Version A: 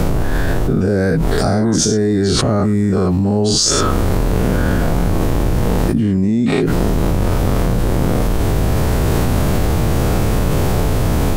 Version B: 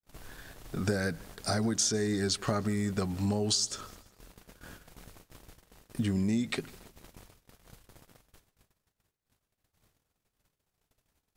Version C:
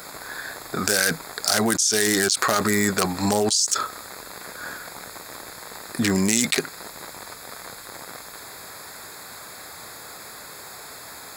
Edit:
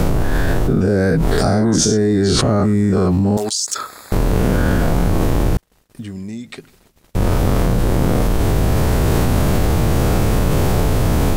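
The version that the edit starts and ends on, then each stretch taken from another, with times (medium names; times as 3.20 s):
A
3.37–4.12 s: from C
5.57–7.15 s: from B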